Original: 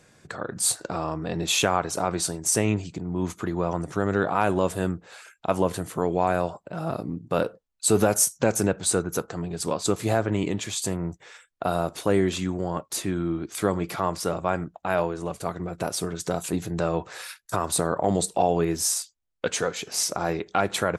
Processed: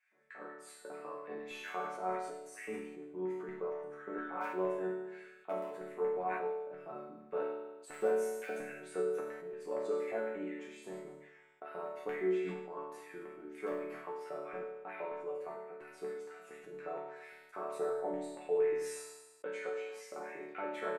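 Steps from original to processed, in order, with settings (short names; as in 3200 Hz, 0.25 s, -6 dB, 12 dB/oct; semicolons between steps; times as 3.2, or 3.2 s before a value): tone controls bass +4 dB, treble -5 dB; in parallel at -10 dB: wrapped overs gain 7.5 dB; on the sum: LFO high-pass square 4.3 Hz 390–2100 Hz; resonant high shelf 2700 Hz -11 dB, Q 1.5; resonator bank D3 major, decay 0.82 s; on a send: echo 95 ms -13.5 dB; on the sum: sustainer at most 49 dB/s; gain +1.5 dB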